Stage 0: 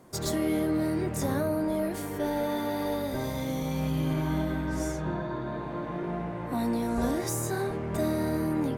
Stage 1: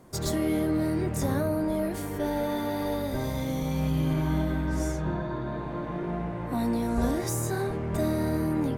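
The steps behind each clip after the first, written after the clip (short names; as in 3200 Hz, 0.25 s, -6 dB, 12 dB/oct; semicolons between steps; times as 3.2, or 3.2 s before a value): low shelf 97 Hz +8.5 dB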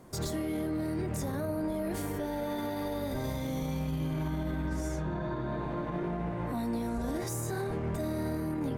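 limiter -25.5 dBFS, peak gain reduction 11 dB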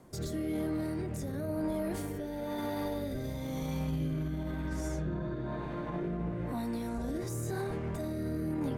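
rotary speaker horn 1 Hz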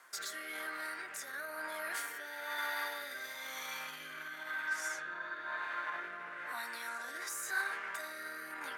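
resonant high-pass 1500 Hz, resonance Q 3.1; gain +4 dB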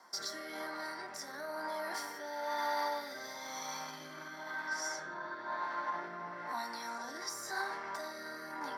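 reverb RT60 0.40 s, pre-delay 3 ms, DRR 8.5 dB; gain -6 dB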